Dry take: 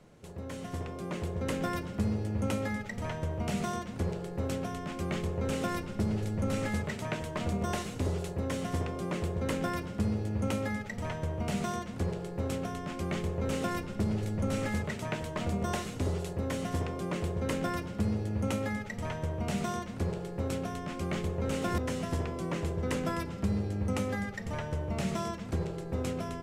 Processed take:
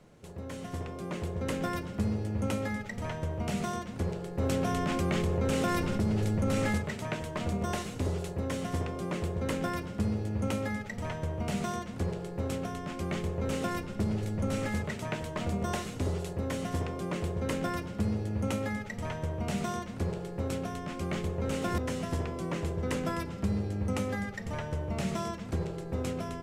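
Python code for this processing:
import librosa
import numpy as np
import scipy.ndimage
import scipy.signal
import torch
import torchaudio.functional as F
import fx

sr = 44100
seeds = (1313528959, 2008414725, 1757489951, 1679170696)

y = fx.env_flatten(x, sr, amount_pct=70, at=(4.38, 6.78))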